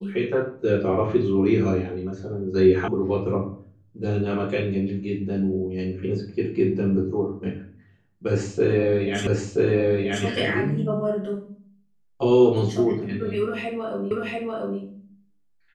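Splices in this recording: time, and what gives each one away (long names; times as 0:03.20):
0:02.88: cut off before it has died away
0:09.27: the same again, the last 0.98 s
0:14.11: the same again, the last 0.69 s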